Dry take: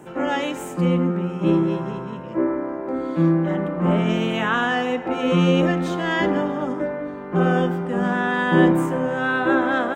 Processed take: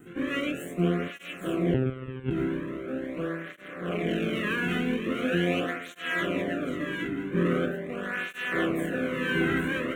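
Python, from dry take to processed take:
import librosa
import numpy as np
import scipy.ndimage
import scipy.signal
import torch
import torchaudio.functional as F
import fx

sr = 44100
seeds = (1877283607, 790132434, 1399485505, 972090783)

y = fx.peak_eq(x, sr, hz=140.0, db=10.5, octaves=1.7, at=(0.46, 1.08))
y = np.maximum(y, 0.0)
y = fx.fixed_phaser(y, sr, hz=2100.0, stages=4)
y = fx.comb_fb(y, sr, f0_hz=140.0, decay_s=0.62, harmonics='all', damping=0.0, mix_pct=60)
y = fx.echo_multitap(y, sr, ms=(621, 641, 818), db=(-17.0, -17.0, -5.5))
y = fx.lpc_monotone(y, sr, seeds[0], pitch_hz=130.0, order=16, at=(1.74, 2.31))
y = fx.flanger_cancel(y, sr, hz=0.42, depth_ms=1.8)
y = F.gain(torch.from_numpy(y), 9.0).numpy()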